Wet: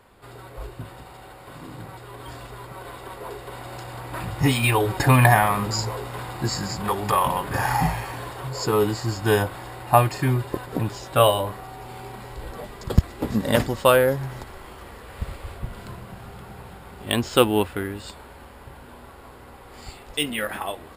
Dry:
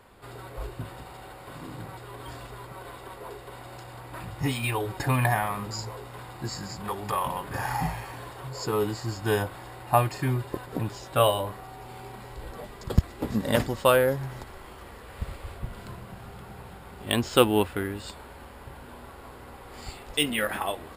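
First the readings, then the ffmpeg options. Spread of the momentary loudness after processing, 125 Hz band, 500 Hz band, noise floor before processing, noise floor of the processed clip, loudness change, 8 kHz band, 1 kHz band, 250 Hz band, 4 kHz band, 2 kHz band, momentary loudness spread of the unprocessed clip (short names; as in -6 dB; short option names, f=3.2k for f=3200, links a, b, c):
21 LU, +6.0 dB, +4.0 dB, -46 dBFS, -45 dBFS, +5.5 dB, +5.0 dB, +6.0 dB, +4.5 dB, +3.5 dB, +5.5 dB, 21 LU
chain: -af "dynaudnorm=f=430:g=17:m=11.5dB"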